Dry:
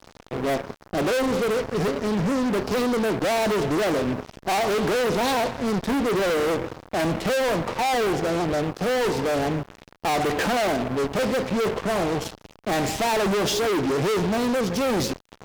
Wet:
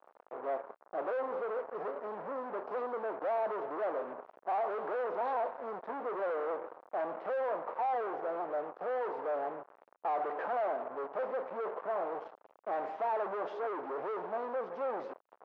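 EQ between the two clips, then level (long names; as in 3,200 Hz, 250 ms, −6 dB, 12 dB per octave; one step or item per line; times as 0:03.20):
flat-topped band-pass 820 Hz, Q 0.97
high-frequency loss of the air 61 metres
−8.0 dB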